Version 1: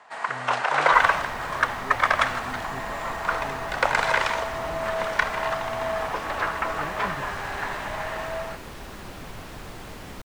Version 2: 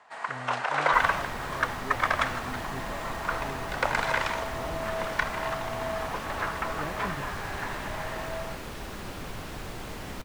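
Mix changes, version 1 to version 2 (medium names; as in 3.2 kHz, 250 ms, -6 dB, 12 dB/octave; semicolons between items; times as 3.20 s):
first sound -5.0 dB; reverb: on, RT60 1.3 s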